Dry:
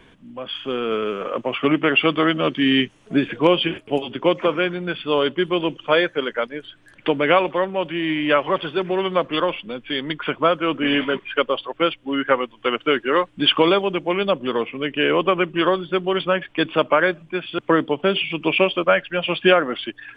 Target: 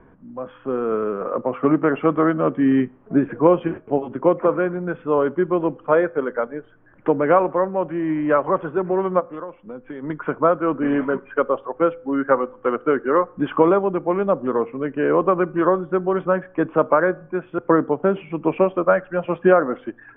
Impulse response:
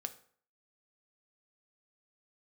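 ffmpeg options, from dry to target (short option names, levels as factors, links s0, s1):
-filter_complex "[0:a]lowpass=f=1400:w=0.5412,lowpass=f=1400:w=1.3066,asplit=3[s0][s1][s2];[s0]afade=t=out:st=9.19:d=0.02[s3];[s1]acompressor=threshold=0.0224:ratio=4,afade=t=in:st=9.19:d=0.02,afade=t=out:st=10.02:d=0.02[s4];[s2]afade=t=in:st=10.02:d=0.02[s5];[s3][s4][s5]amix=inputs=3:normalize=0,asplit=2[s6][s7];[1:a]atrim=start_sample=2205[s8];[s7][s8]afir=irnorm=-1:irlink=0,volume=0.422[s9];[s6][s9]amix=inputs=2:normalize=0,volume=0.891"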